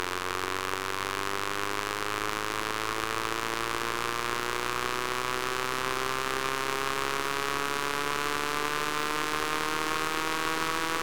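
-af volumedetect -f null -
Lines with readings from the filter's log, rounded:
mean_volume: -30.5 dB
max_volume: -9.8 dB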